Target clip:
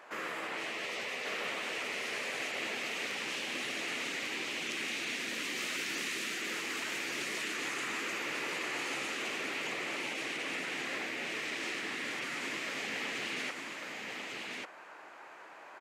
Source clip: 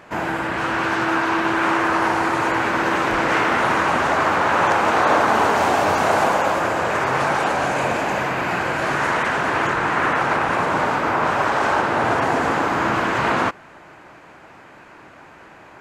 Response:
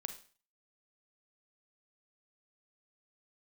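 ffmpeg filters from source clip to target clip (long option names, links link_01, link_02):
-af "highpass=470,afftfilt=real='re*lt(hypot(re,im),0.141)':imag='im*lt(hypot(re,im),0.141)':win_size=1024:overlap=0.75,aecho=1:1:1144:0.668,volume=-7.5dB"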